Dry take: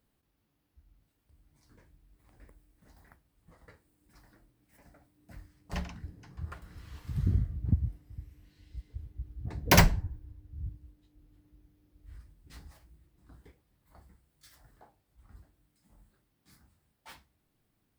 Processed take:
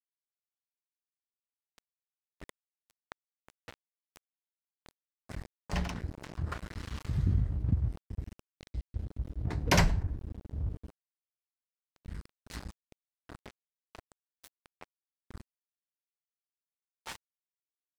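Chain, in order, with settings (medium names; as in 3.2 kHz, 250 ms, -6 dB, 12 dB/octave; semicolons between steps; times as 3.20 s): low-pass 8.9 kHz 12 dB/octave; crossover distortion -49.5 dBFS; level flattener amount 50%; trim -5 dB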